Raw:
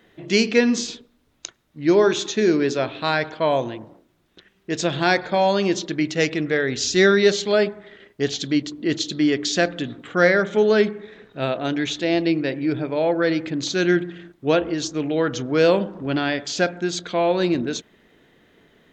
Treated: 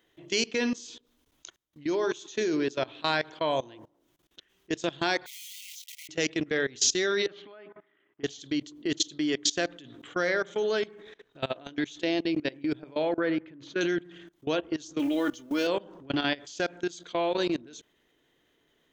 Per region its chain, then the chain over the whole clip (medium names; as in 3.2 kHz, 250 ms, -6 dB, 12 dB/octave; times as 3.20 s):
5.26–6.09 s: block-companded coder 3-bit + brick-wall FIR high-pass 1.9 kHz
7.26–8.24 s: compression 2.5:1, threshold -34 dBFS + cabinet simulation 120–2600 Hz, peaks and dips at 300 Hz +6 dB, 470 Hz -8 dB, 1.2 kHz +6 dB
13.19–13.81 s: Chebyshev low-pass 1.9 kHz + band-stop 750 Hz, Q 8.9
14.99–15.67 s: companding laws mixed up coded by mu + comb 3.4 ms, depth 76%
whole clip: graphic EQ with 31 bands 100 Hz -5 dB, 200 Hz -10 dB, 315 Hz +3 dB, 1 kHz +3 dB, 3.15 kHz +6 dB, 6.3 kHz +5 dB; level held to a coarse grid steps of 22 dB; treble shelf 6.7 kHz +10 dB; trim -4.5 dB